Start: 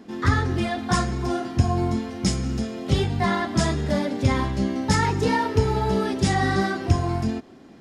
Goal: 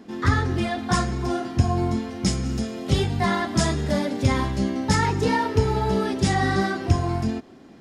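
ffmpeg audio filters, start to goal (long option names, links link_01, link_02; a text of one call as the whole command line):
ffmpeg -i in.wav -filter_complex "[0:a]asettb=1/sr,asplit=3[link_01][link_02][link_03];[link_01]atrim=end=2.454[link_04];[link_02]atrim=start=2.45:end=4.7,asetpts=PTS-STARTPTS,afade=type=in:duration=0.004:curve=qsin,afade=type=out:start_time=2.246:duration=0.004:curve=qsin,highshelf=frequency=6600:gain=5.5[link_05];[link_03]atrim=start=4.696[link_06];[link_04][link_05]acrossfade=duration=0.004:curve1=hsin:curve2=qsin[link_07];[link_07][link_06]acrossfade=duration=0.004:curve1=qsin:curve2=hsin" out.wav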